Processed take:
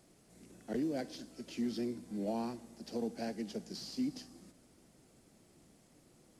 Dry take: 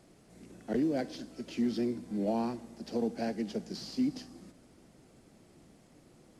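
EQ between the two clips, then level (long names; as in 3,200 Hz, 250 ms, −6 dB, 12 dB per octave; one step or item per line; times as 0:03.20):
high-shelf EQ 5,300 Hz +8.5 dB
−5.5 dB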